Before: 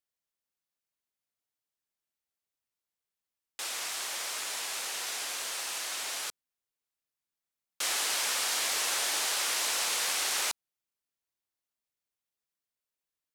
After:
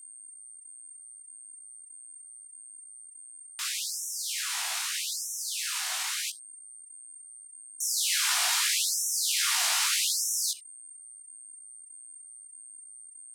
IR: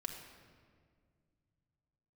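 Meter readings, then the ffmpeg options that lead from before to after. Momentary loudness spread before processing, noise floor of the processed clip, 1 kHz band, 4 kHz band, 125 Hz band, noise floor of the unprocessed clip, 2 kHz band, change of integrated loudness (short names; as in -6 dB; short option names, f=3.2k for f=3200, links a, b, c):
7 LU, -50 dBFS, -1.0 dB, +3.0 dB, n/a, under -85 dBFS, +1.0 dB, +3.5 dB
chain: -filter_complex "[0:a]aeval=exprs='val(0)+0.00398*sin(2*PI*8700*n/s)':c=same,flanger=delay=16:depth=2.9:speed=1.6,aeval=exprs='0.0944*(cos(1*acos(clip(val(0)/0.0944,-1,1)))-cos(1*PI/2))+0.000596*(cos(7*acos(clip(val(0)/0.0944,-1,1)))-cos(7*PI/2))':c=same,asplit=2[a][b];[1:a]atrim=start_sample=2205,atrim=end_sample=3528[c];[b][c]afir=irnorm=-1:irlink=0,volume=-2dB[d];[a][d]amix=inputs=2:normalize=0,afftfilt=real='re*gte(b*sr/1024,610*pow(5500/610,0.5+0.5*sin(2*PI*0.8*pts/sr)))':imag='im*gte(b*sr/1024,610*pow(5500/610,0.5+0.5*sin(2*PI*0.8*pts/sr)))':win_size=1024:overlap=0.75,volume=3.5dB"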